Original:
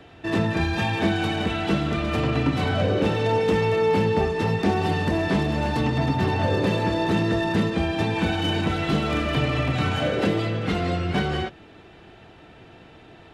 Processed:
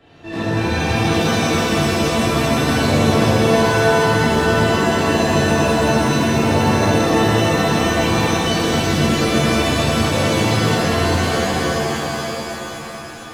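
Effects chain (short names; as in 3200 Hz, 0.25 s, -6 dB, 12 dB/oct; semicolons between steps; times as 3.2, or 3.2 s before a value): shimmer reverb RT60 3.6 s, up +7 st, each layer -2 dB, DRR -11 dB; gain -7.5 dB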